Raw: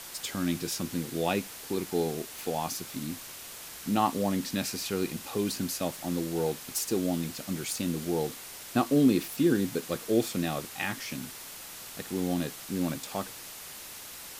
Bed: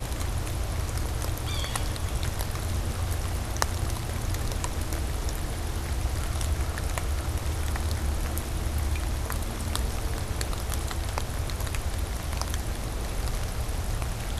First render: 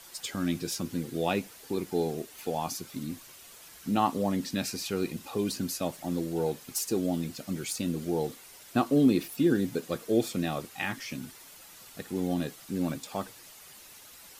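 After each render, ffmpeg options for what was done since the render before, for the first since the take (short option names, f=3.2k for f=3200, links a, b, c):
-af "afftdn=nr=9:nf=-44"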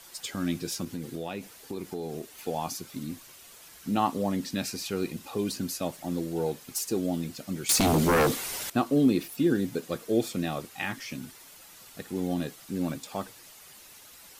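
-filter_complex "[0:a]asettb=1/sr,asplit=3[a][b][c];[a]atrim=end=0.844[d];[b]atrim=start=0.84:end=2.3,asetpts=PTS-STARTPTS,afade=t=in:d=0.004:c=qsin,afade=t=out:st=1.456:d=0.004:c=qsin,acompressor=threshold=-30dB:ratio=6:attack=3.2:release=140:knee=1:detection=peak[e];[c]atrim=start=2.296[f];[d][e]acrossfade=d=0.004:c1=hsin:c2=qsin[g];[g][f]acrossfade=d=0.004:c1=qsin:c2=hsin,asettb=1/sr,asplit=3[h][i][j];[h]atrim=end=7.694[k];[i]atrim=start=7.69:end=8.7,asetpts=PTS-STARTPTS,afade=t=in:d=0.004:c=qsin,afade=t=out:st=1.006:d=0.004:c=qsin,aeval=exprs='0.126*sin(PI/2*3.98*val(0)/0.126)':c=same[l];[j]atrim=start=8.696[m];[k][l]acrossfade=d=0.004:c1=hsin:c2=qsin[n];[n][m]acrossfade=d=0.004:c1=qsin:c2=hsin"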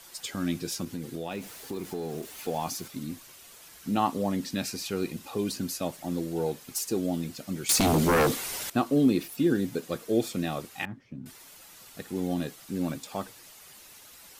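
-filter_complex "[0:a]asettb=1/sr,asplit=3[a][b][c];[a]atrim=end=1.314[d];[b]atrim=start=1.31:end=2.88,asetpts=PTS-STARTPTS,afade=t=in:d=0.004:c=qsin,afade=t=out:st=1.566:d=0.004:c=qsin,aeval=exprs='val(0)+0.5*0.00562*sgn(val(0))':c=same[e];[c]atrim=start=2.876[f];[d][e]acrossfade=d=0.004:c1=hsin:c2=qsin[g];[g][f]acrossfade=d=0.004:c1=qsin:c2=hsin,asettb=1/sr,asplit=3[h][i][j];[h]atrim=end=10.854[k];[i]atrim=start=10.85:end=11.26,asetpts=PTS-STARTPTS,afade=t=in:d=0.004:c=qsin,afade=t=out:st=0.406:d=0.004:c=qsin,bandpass=f=120:t=q:w=0.68[l];[j]atrim=start=11.256[m];[k][l]acrossfade=d=0.004:c1=hsin:c2=qsin[n];[n][m]acrossfade=d=0.004:c1=qsin:c2=hsin"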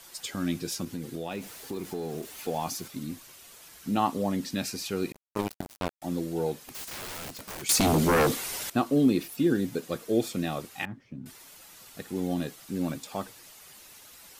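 -filter_complex "[0:a]asettb=1/sr,asplit=3[a][b][c];[a]atrim=end=5.124[d];[b]atrim=start=5.12:end=6.02,asetpts=PTS-STARTPTS,afade=t=in:d=0.004:c=qsin,afade=t=out:st=0.896:d=0.004:c=qsin,acrusher=bits=3:mix=0:aa=0.5[e];[c]atrim=start=6.016[f];[d][e]acrossfade=d=0.004:c1=hsin:c2=qsin[g];[g][f]acrossfade=d=0.004:c1=qsin:c2=hsin,asplit=3[h][i][j];[h]afade=t=out:st=6.59:d=0.02[k];[i]aeval=exprs='(mod(50.1*val(0)+1,2)-1)/50.1':c=same,afade=t=in:st=6.59:d=0.02,afade=t=out:st=7.61:d=0.02[l];[j]afade=t=in:st=7.61:d=0.02[m];[k][l][m]amix=inputs=3:normalize=0"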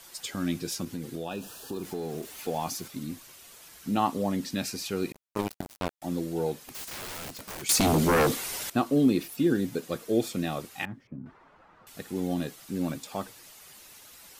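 -filter_complex "[0:a]asettb=1/sr,asplit=3[a][b][c];[a]atrim=end=1.244[d];[b]atrim=start=1.24:end=1.83,asetpts=PTS-STARTPTS,afade=t=in:d=0.004:c=qsin,afade=t=out:st=0.586:d=0.004:c=qsin,asuperstop=centerf=2100:order=12:qfactor=3.5[e];[c]atrim=start=1.826[f];[d][e]acrossfade=d=0.004:c1=hsin:c2=qsin[g];[g][f]acrossfade=d=0.004:c1=qsin:c2=hsin,asettb=1/sr,asplit=3[h][i][j];[h]atrim=end=11.074[k];[i]atrim=start=11.07:end=11.87,asetpts=PTS-STARTPTS,afade=t=in:d=0.004:c=qsin,afade=t=out:st=0.796:d=0.004:c=qsin,lowpass=f=1.2k:t=q:w=1.5[l];[j]atrim=start=11.866[m];[k][l]acrossfade=d=0.004:c1=hsin:c2=qsin[n];[n][m]acrossfade=d=0.004:c1=qsin:c2=hsin"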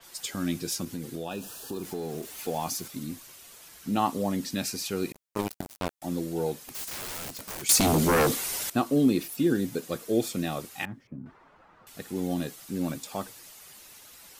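-af "adynamicequalizer=threshold=0.00355:dfrequency=5100:dqfactor=0.7:tfrequency=5100:tqfactor=0.7:attack=5:release=100:ratio=0.375:range=2:mode=boostabove:tftype=highshelf"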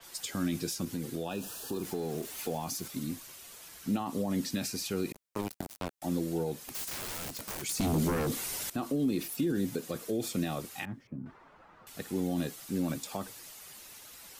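-filter_complex "[0:a]alimiter=limit=-21dB:level=0:latency=1:release=37,acrossover=split=320[a][b];[b]acompressor=threshold=-34dB:ratio=4[c];[a][c]amix=inputs=2:normalize=0"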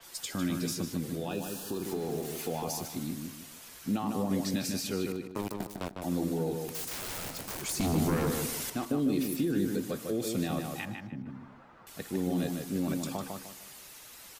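-filter_complex "[0:a]asplit=2[a][b];[b]adelay=152,lowpass=f=3.1k:p=1,volume=-4dB,asplit=2[c][d];[d]adelay=152,lowpass=f=3.1k:p=1,volume=0.34,asplit=2[e][f];[f]adelay=152,lowpass=f=3.1k:p=1,volume=0.34,asplit=2[g][h];[h]adelay=152,lowpass=f=3.1k:p=1,volume=0.34[i];[a][c][e][g][i]amix=inputs=5:normalize=0"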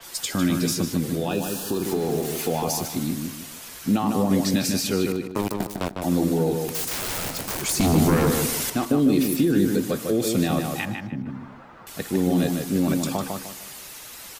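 -af "volume=9.5dB"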